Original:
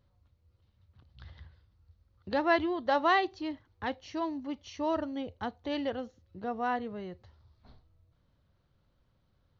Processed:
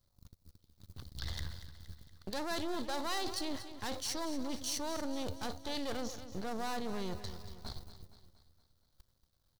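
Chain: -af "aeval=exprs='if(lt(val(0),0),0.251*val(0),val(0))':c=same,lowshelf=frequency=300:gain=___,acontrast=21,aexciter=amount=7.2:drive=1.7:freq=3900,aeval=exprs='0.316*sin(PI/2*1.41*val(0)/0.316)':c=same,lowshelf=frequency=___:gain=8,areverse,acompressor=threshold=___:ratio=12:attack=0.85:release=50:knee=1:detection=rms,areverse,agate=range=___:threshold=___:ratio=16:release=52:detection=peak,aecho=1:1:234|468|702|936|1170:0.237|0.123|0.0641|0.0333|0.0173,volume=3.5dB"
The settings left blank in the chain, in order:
-6.5, 110, -35dB, -19dB, -56dB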